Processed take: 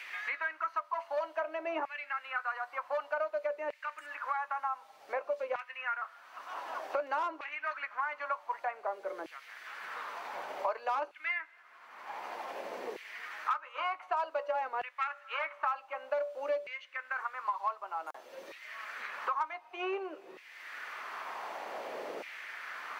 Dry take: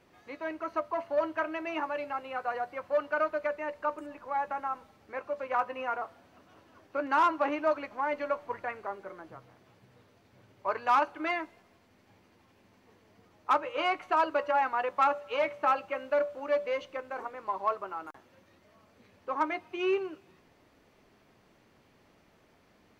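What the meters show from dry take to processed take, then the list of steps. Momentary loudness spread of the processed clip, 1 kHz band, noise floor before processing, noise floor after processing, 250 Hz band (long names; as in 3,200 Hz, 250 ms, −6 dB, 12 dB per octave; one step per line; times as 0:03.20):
10 LU, −4.5 dB, −64 dBFS, −58 dBFS, −12.0 dB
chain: auto-filter high-pass saw down 0.54 Hz 430–2,300 Hz
multiband upward and downward compressor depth 100%
level −6.5 dB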